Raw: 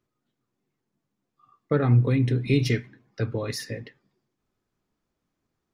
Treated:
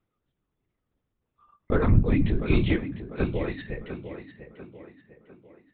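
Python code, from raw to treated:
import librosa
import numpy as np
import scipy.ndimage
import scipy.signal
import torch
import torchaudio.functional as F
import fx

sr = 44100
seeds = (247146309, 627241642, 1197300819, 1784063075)

y = fx.lpc_vocoder(x, sr, seeds[0], excitation='whisper', order=10)
y = fx.echo_tape(y, sr, ms=697, feedback_pct=48, wet_db=-9, lp_hz=2700.0, drive_db=7.0, wow_cents=36)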